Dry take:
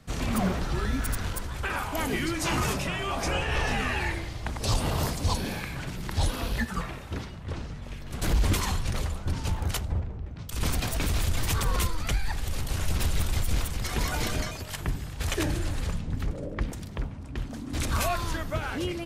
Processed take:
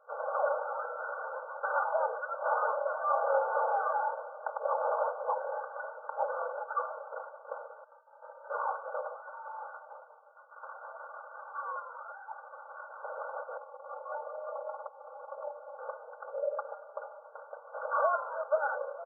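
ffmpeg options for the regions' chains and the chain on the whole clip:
ffmpeg -i in.wav -filter_complex "[0:a]asettb=1/sr,asplit=3[link_01][link_02][link_03];[link_01]atrim=end=7.844[link_04];[link_02]atrim=start=7.84:end=8.5,asetpts=PTS-STARTPTS,afade=type=in:duration=0.004:curve=qsin,afade=type=out:start_time=0.656:duration=0.004:curve=qsin,equalizer=frequency=2400:width_type=o:width=0.53:gain=-12,aecho=1:1:2.9:0.82,atrim=end_sample=29106,lowpass=frequency=3100:width_type=q:width=0.5098,lowpass=frequency=3100:width_type=q:width=0.6013,lowpass=frequency=3100:width_type=q:width=0.9,lowpass=frequency=3100:width_type=q:width=2.563,afreqshift=-3700[link_05];[link_03]atrim=start=8.496[link_06];[link_04][link_05]acrossfade=duration=0.004:curve1=hsin:curve2=qsin[link_07];[link_07][link_06]acrossfade=duration=0.004:curve1=qsin:curve2=hsin,asettb=1/sr,asplit=3[link_08][link_09][link_10];[link_08]atrim=end=9.164[link_11];[link_09]atrim=start=9.16:end=13.04,asetpts=PTS-STARTPTS,afade=type=in:duration=0.004:curve=qsin,afade=type=out:start_time=3.876:duration=0.004:curve=qsin,highpass=870,acompressor=threshold=-39dB:ratio=1.5:attack=3.2:release=140:knee=1:detection=peak,asoftclip=type=hard:threshold=-34dB[link_12];[link_10]atrim=start=13.036[link_13];[link_11][link_12]acrossfade=duration=0.004:curve1=hsin:curve2=qsin[link_14];[link_14][link_13]acrossfade=duration=0.004:curve1=qsin:curve2=hsin,asettb=1/sr,asplit=3[link_15][link_16][link_17];[link_15]atrim=end=13.574[link_18];[link_16]atrim=start=13.57:end=15.79,asetpts=PTS-STARTPTS,afade=type=in:duration=0.004:curve=qsin,afade=type=out:start_time=2.216:duration=0.004:curve=qsin,aecho=1:1:3.6:0.93,atrim=end_sample=97902,acompressor=threshold=-31dB:ratio=16:attack=3.2:release=140:knee=1:detection=peak,lowpass=frequency=1200:width=0.5412,lowpass=frequency=1200:width=1.3066[link_19];[link_17]atrim=start=15.786[link_20];[link_18][link_19]acrossfade=duration=0.004:curve1=hsin:curve2=qsin[link_21];[link_21][link_20]acrossfade=duration=0.004:curve1=qsin:curve2=hsin,asettb=1/sr,asplit=3[link_22][link_23][link_24];[link_22]atrim=end=16.434[link_25];[link_23]atrim=start=16.43:end=17.2,asetpts=PTS-STARTPTS,afade=type=in:duration=0.004:curve=qsin,afade=type=out:start_time=0.766:duration=0.004:curve=qsin,aecho=1:1:5:0.59,atrim=end_sample=33957,asoftclip=type=hard:threshold=-23.5dB[link_26];[link_24]atrim=start=17.196[link_27];[link_25][link_26]acrossfade=duration=0.004:curve1=hsin:curve2=qsin[link_28];[link_28][link_27]acrossfade=duration=0.004:curve1=qsin:curve2=hsin,afftfilt=real='re*between(b*sr/4096,420,1600)':imag='im*between(b*sr/4096,420,1600)':win_size=4096:overlap=0.75,adynamicequalizer=threshold=0.00398:dfrequency=620:dqfactor=1.1:tfrequency=620:tqfactor=1.1:attack=5:release=100:ratio=0.375:range=2:mode=boostabove:tftype=bell,aecho=1:1:3.5:0.82,volume=-1dB" out.wav

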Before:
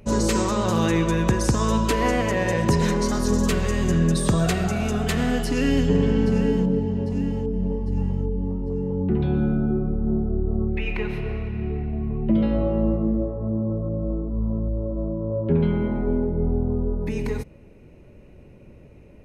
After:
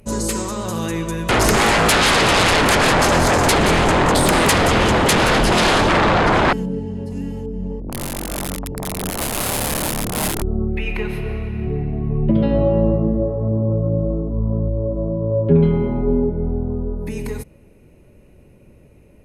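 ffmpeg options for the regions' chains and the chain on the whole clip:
ffmpeg -i in.wav -filter_complex "[0:a]asettb=1/sr,asplit=3[link_01][link_02][link_03];[link_01]atrim=end=1.294[link_04];[link_02]atrim=start=1.29:end=6.53,asetpts=PTS-STARTPTS,afade=type=in:duration=0.004:curve=qsin,afade=type=out:start_time=5.236:duration=0.004:curve=qsin,lowpass=3600,aeval=exprs='0.335*sin(PI/2*6.31*val(0)/0.335)':channel_layout=same,aecho=1:1:174:0.282,atrim=end_sample=231084[link_05];[link_03]atrim=start=6.526[link_06];[link_04][link_05]acrossfade=duration=0.004:curve1=hsin:curve2=qsin[link_07];[link_07][link_06]acrossfade=duration=0.004:curve1=qsin:curve2=hsin,asettb=1/sr,asplit=3[link_08][link_09][link_10];[link_08]atrim=end=7.804[link_11];[link_09]atrim=start=7.8:end=10.42,asetpts=PTS-STARTPTS,afade=type=in:duration=0.004:curve=qsin,afade=type=out:start_time=2.616:duration=0.004:curve=qsin,aeval=exprs='(mod(8.91*val(0)+1,2)-1)/8.91':channel_layout=same,acrossover=split=430|1400[link_12][link_13][link_14];[link_13]adelay=80[link_15];[link_14]adelay=110[link_16];[link_12][link_15][link_16]amix=inputs=3:normalize=0,atrim=end_sample=115542[link_17];[link_10]atrim=start=10.416[link_18];[link_11][link_17]acrossfade=duration=0.004:curve1=hsin:curve2=qsin[link_19];[link_19][link_18]acrossfade=duration=0.004:curve1=qsin:curve2=hsin,asettb=1/sr,asplit=3[link_20][link_21][link_22];[link_20]atrim=end=11.664[link_23];[link_21]atrim=start=11.66:end=16.3,asetpts=PTS-STARTPTS,afade=type=in:duration=0.004:curve=qsin,afade=type=out:start_time=4.636:duration=0.004:curve=qsin,tiltshelf=frequency=830:gain=3,aecho=1:1:7.2:0.52,atrim=end_sample=204624[link_24];[link_22]atrim=start=16.296[link_25];[link_23][link_24]acrossfade=duration=0.004:curve1=hsin:curve2=qsin[link_26];[link_26][link_25]acrossfade=duration=0.004:curve1=qsin:curve2=hsin,equalizer=frequency=11000:width_type=o:width=0.94:gain=14,bandreject=frequency=5700:width=23,dynaudnorm=framelen=470:gausssize=17:maxgain=11.5dB,volume=-1dB" out.wav

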